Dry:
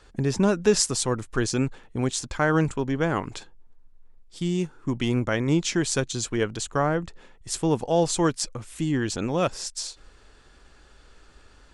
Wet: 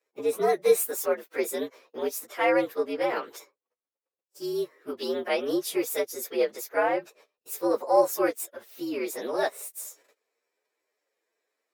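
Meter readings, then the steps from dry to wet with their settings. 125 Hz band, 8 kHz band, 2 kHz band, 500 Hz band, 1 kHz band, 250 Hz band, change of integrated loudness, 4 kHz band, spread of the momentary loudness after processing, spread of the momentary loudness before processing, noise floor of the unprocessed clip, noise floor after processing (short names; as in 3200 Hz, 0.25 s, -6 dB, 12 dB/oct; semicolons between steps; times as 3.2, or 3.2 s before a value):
-27.0 dB, -7.5 dB, -2.5 dB, +1.0 dB, 0.0 dB, -8.0 dB, -2.5 dB, -8.0 dB, 14 LU, 10 LU, -54 dBFS, under -85 dBFS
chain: inharmonic rescaling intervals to 117%; gate -50 dBFS, range -20 dB; ladder high-pass 370 Hz, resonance 40%; gain +8 dB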